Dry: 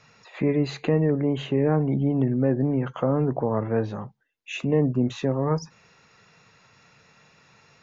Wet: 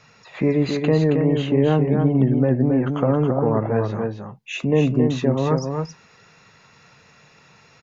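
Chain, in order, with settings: echo 0.272 s -5 dB; gain +3.5 dB

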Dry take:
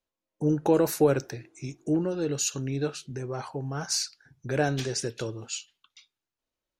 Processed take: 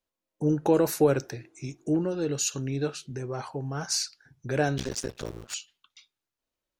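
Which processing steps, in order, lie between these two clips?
4.78–5.54 cycle switcher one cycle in 2, muted

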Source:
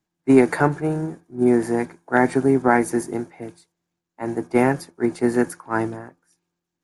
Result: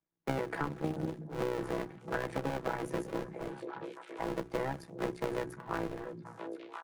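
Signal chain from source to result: cycle switcher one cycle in 2, muted; gate with hold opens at -47 dBFS; high shelf 3500 Hz -11 dB; notches 60/120/180/240/300/360 Hz; comb 6.1 ms, depth 82%; compressor, threshold -19 dBFS, peak gain reduction 9 dB; AM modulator 64 Hz, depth 50%; delay with a stepping band-pass 0.343 s, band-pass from 160 Hz, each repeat 1.4 oct, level -10 dB; three-band squash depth 70%; gain -7.5 dB

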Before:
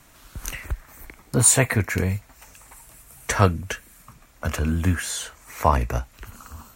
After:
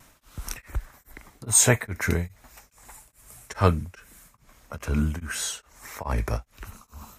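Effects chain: varispeed -6%; vibrato 1.7 Hz 26 cents; beating tremolo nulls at 2.4 Hz

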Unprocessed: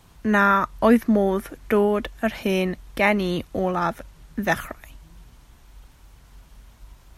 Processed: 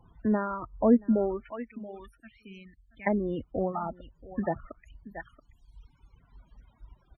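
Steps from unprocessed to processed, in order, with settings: 1.52–3.07 passive tone stack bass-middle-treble 6-0-2; echo 0.679 s -14.5 dB; reverb removal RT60 1.8 s; treble ducked by the level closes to 650 Hz, closed at -20 dBFS; loudest bins only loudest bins 32; gain -3.5 dB

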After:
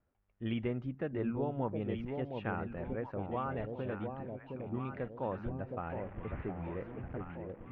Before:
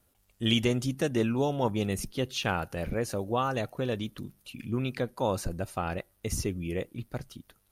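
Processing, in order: 5.89–7.37 delta modulation 16 kbps, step -36.5 dBFS; LPF 2100 Hz 24 dB/oct; echo with dull and thin repeats by turns 0.714 s, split 830 Hz, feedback 65%, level -4 dB; gain -8.5 dB

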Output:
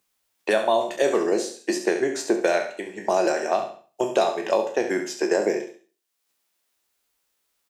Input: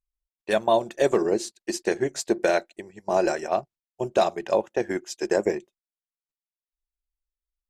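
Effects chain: spectral trails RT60 0.31 s; HPF 230 Hz 12 dB/oct; feedback echo 69 ms, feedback 28%, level -10 dB; three-band squash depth 70%

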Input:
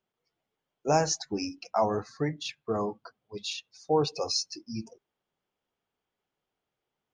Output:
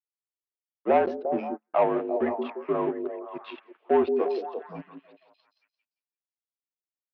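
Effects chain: power-law curve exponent 1.4; high shelf 2200 Hz -10 dB; sample leveller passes 2; mistuned SSB -57 Hz 300–3100 Hz; delay with a stepping band-pass 0.173 s, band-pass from 320 Hz, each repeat 0.7 oct, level -3.5 dB; 1.06–1.74 gate -32 dBFS, range -44 dB; gain +3 dB

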